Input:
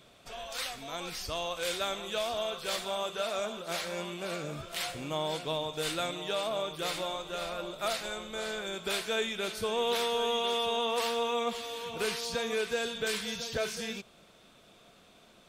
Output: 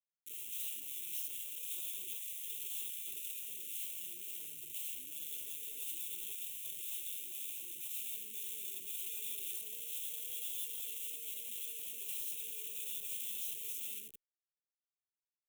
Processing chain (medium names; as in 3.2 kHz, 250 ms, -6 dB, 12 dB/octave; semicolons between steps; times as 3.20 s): feedback delay 157 ms, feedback 42%, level -13.5 dB; on a send at -10.5 dB: reverberation RT60 0.55 s, pre-delay 15 ms; on the sum: Schmitt trigger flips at -42.5 dBFS; elliptic band-stop 430–2800 Hz, stop band 60 dB; differentiator; static phaser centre 2 kHz, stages 4; peak limiter -31.5 dBFS, peak gain reduction 5 dB; trim +1 dB